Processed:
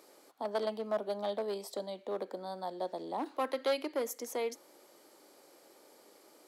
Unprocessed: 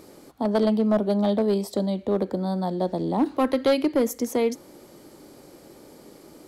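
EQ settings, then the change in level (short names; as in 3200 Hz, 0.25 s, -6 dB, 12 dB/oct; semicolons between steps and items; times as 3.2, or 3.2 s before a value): HPF 520 Hz 12 dB/oct; -7.5 dB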